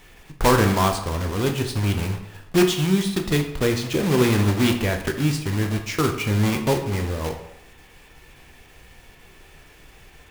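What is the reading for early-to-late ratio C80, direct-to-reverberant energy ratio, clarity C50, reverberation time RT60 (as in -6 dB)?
11.0 dB, 4.0 dB, 8.5 dB, 0.80 s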